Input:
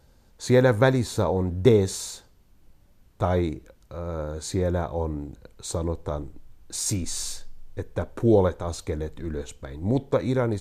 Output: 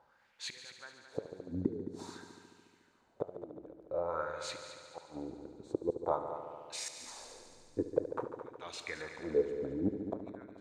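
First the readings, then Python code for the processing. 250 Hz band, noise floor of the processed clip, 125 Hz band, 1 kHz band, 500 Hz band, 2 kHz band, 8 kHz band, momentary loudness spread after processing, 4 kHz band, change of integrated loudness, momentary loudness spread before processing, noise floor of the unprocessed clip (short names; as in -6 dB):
-13.5 dB, -69 dBFS, -23.5 dB, -10.0 dB, -13.0 dB, -13.0 dB, -16.0 dB, 14 LU, -10.0 dB, -14.0 dB, 18 LU, -58 dBFS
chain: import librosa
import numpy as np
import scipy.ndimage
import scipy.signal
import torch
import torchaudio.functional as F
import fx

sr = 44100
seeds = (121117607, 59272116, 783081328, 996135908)

y = fx.gate_flip(x, sr, shuts_db=-17.0, range_db=-28)
y = fx.wah_lfo(y, sr, hz=0.49, low_hz=280.0, high_hz=2700.0, q=3.2)
y = fx.echo_heads(y, sr, ms=72, heads='all three', feedback_pct=60, wet_db=-13.5)
y = F.gain(torch.from_numpy(y), 6.5).numpy()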